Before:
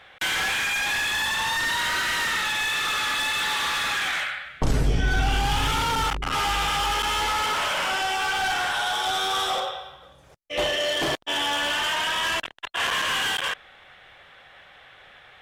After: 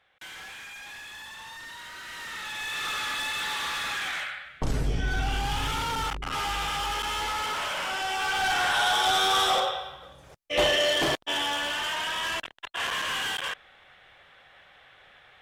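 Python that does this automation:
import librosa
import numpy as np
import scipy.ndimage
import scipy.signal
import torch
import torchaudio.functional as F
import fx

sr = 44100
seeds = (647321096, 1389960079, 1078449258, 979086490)

y = fx.gain(x, sr, db=fx.line((1.94, -17.5), (2.86, -5.5), (7.93, -5.5), (8.83, 2.0), (10.75, 2.0), (11.71, -5.0)))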